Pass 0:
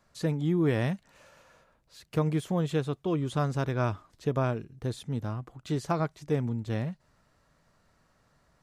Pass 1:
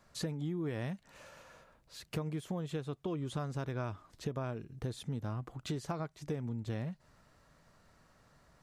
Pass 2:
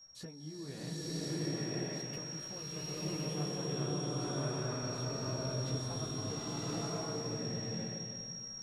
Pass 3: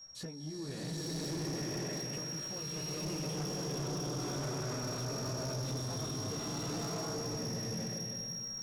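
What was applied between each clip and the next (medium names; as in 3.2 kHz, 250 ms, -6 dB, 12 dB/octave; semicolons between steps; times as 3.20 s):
compression 6:1, threshold -37 dBFS, peak gain reduction 14.5 dB; trim +2 dB
whistle 5.6 kHz -46 dBFS; chorus 0.5 Hz, delay 15.5 ms, depth 7.8 ms; swelling reverb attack 1080 ms, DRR -10.5 dB; trim -6.5 dB
saturation -39 dBFS, distortion -10 dB; trim +5 dB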